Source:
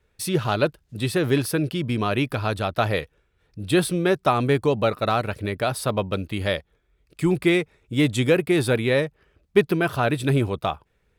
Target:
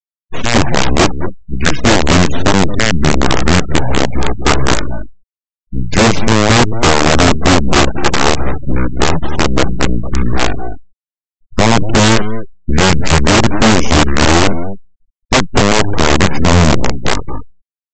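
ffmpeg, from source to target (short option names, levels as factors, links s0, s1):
-filter_complex "[0:a]aeval=exprs='val(0)+0.5*0.0335*sgn(val(0))':c=same,asetrate=27518,aresample=44100,aeval=exprs='0.596*(cos(1*acos(clip(val(0)/0.596,-1,1)))-cos(1*PI/2))+0.0841*(cos(5*acos(clip(val(0)/0.596,-1,1)))-cos(5*PI/2))+0.0133*(cos(6*acos(clip(val(0)/0.596,-1,1)))-cos(6*PI/2))+0.15*(cos(7*acos(clip(val(0)/0.596,-1,1)))-cos(7*PI/2))+0.211*(cos(8*acos(clip(val(0)/0.596,-1,1)))-cos(8*PI/2))':c=same,lowshelf=f=430:g=7,acontrast=29,lowpass=f=1900:p=1,asplit=2[s0][s1];[s1]aecho=0:1:223:0.266[s2];[s0][s2]amix=inputs=2:normalize=0,agate=range=0.0224:threshold=0.1:ratio=3:detection=peak,aemphasis=mode=production:type=75kf,aresample=16000,aeval=exprs='(mod(1.19*val(0)+1,2)-1)/1.19':c=same,aresample=44100,afftfilt=real='re*gte(hypot(re,im),0.0631)':imag='im*gte(hypot(re,im),0.0631)':win_size=1024:overlap=0.75,alimiter=level_in=1.88:limit=0.891:release=50:level=0:latency=1,volume=0.891"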